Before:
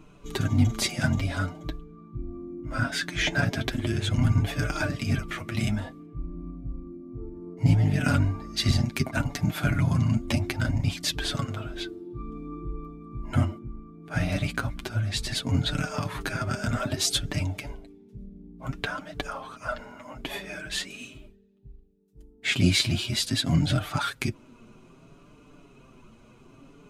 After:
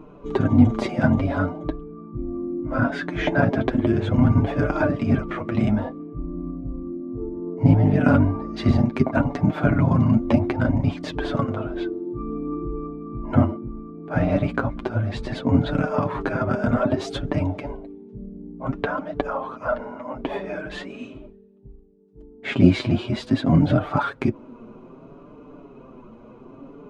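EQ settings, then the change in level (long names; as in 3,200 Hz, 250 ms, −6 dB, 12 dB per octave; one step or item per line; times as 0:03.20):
graphic EQ with 10 bands 250 Hz +7 dB, 500 Hz +10 dB, 1,000 Hz +8 dB
dynamic equaliser 4,900 Hz, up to −3 dB, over −40 dBFS, Q 1.1
head-to-tape spacing loss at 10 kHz 25 dB
+2.0 dB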